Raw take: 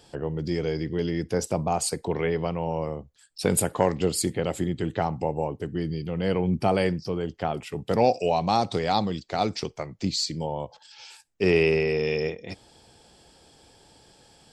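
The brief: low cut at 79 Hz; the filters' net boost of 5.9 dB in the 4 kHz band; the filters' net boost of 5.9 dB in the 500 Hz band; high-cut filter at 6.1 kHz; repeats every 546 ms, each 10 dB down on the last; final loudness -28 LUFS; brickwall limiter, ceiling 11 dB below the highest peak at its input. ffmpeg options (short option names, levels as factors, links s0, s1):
-af "highpass=79,lowpass=6100,equalizer=f=500:t=o:g=7,equalizer=f=4000:t=o:g=8,alimiter=limit=0.211:level=0:latency=1,aecho=1:1:546|1092|1638|2184:0.316|0.101|0.0324|0.0104,volume=0.708"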